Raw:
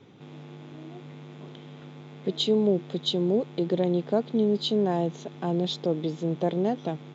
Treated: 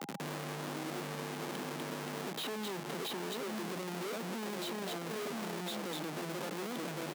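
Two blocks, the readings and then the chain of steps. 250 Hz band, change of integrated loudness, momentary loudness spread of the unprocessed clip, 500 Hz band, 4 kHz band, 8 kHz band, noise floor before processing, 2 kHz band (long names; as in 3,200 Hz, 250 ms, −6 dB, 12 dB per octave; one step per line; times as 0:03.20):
−13.0 dB, −12.5 dB, 20 LU, −13.5 dB, −9.0 dB, can't be measured, −45 dBFS, +6.0 dB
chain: on a send: echo through a band-pass that steps 246 ms, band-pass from 3,300 Hz, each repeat −1.4 octaves, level 0 dB
on the sum: downward compressor 5 to 1, threshold −33 dBFS, peak gain reduction 14 dB
comparator with hysteresis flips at −46.5 dBFS
steady tone 810 Hz −56 dBFS
Butterworth high-pass 160 Hz
low-shelf EQ 470 Hz −3 dB
slap from a distant wall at 180 metres, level −15 dB
multiband upward and downward compressor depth 70%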